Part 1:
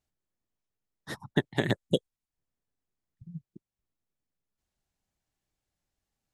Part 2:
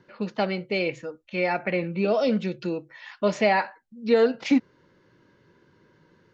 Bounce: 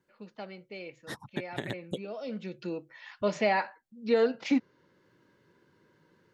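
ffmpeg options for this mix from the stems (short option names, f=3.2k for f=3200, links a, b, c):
-filter_complex "[0:a]acompressor=threshold=-29dB:ratio=10,volume=-1dB[a];[1:a]deesser=0.7,volume=-5dB,afade=t=in:st=2.21:d=0.61:silence=0.266073,asplit=2[b][c];[c]apad=whole_len=279185[d];[a][d]sidechaincompress=threshold=-33dB:ratio=8:attack=16:release=543[e];[e][b]amix=inputs=2:normalize=0,lowshelf=f=71:g=-10"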